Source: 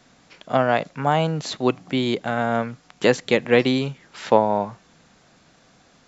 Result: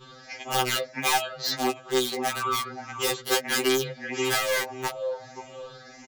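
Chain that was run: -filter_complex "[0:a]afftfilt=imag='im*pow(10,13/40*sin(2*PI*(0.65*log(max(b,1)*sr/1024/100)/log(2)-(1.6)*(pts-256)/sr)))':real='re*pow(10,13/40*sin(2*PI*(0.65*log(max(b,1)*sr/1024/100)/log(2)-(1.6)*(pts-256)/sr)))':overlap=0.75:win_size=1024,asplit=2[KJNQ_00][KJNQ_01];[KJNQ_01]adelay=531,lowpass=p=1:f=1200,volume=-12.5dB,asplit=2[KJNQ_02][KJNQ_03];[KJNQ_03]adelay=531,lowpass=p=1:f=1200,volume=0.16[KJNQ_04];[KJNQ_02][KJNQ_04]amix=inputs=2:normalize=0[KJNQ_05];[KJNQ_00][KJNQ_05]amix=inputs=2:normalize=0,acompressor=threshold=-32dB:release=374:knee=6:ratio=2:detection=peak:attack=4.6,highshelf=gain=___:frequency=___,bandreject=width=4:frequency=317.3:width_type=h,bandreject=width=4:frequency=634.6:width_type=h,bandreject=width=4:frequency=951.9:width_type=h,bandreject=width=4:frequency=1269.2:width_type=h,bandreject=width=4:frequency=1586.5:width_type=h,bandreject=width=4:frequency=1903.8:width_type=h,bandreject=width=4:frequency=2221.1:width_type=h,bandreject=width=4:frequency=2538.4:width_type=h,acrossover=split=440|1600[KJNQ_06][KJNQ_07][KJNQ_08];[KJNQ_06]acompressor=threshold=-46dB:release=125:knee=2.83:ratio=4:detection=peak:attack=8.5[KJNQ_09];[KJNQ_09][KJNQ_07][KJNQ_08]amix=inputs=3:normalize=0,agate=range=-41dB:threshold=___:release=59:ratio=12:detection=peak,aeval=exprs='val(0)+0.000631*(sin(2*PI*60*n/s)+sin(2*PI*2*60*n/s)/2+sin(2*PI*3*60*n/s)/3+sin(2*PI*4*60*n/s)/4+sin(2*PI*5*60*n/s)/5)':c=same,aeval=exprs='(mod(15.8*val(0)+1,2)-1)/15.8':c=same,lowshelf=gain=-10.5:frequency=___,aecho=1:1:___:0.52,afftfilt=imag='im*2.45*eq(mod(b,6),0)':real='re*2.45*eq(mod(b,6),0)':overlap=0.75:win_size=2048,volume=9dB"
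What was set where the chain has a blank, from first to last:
-3, 4300, -58dB, 110, 5.3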